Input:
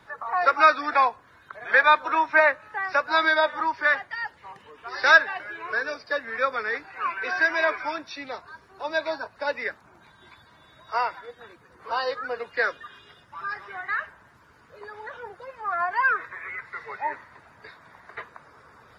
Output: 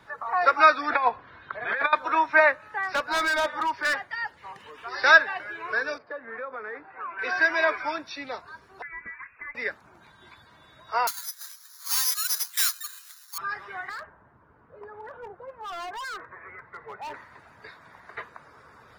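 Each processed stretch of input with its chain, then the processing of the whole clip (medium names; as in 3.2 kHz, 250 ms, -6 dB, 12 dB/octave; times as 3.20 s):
0.90–1.93 s: low-pass 4.1 kHz 24 dB/octave + compressor with a negative ratio -22 dBFS, ratio -0.5
2.81–4.94 s: hard clipper -21.5 dBFS + tape noise reduction on one side only encoder only
5.98–7.19 s: low-pass 1.3 kHz + compression 4:1, threshold -32 dBFS + bass shelf 130 Hz -11.5 dB
8.82–9.55 s: peaking EQ 1.8 kHz -10.5 dB 0.47 oct + compression 4:1, threshold -37 dBFS + frequency inversion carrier 2.6 kHz
11.07–13.38 s: careless resampling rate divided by 8×, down filtered, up zero stuff + valve stage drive 14 dB, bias 0.65 + high-pass 1.1 kHz 24 dB/octave
13.89–17.14 s: low-pass 1.1 kHz + overload inside the chain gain 34 dB
whole clip: none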